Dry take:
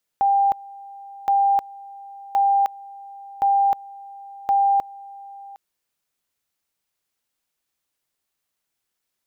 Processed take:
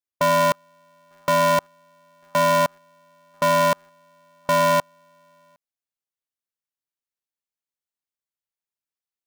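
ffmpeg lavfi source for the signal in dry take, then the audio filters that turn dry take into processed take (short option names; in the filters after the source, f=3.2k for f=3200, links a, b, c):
-f lavfi -i "aevalsrc='pow(10,(-14.5-22*gte(mod(t,1.07),0.31))/20)*sin(2*PI*795*t)':d=5.35:s=44100"
-af "afwtdn=0.0447,aeval=exprs='val(0)*sgn(sin(2*PI*210*n/s))':c=same"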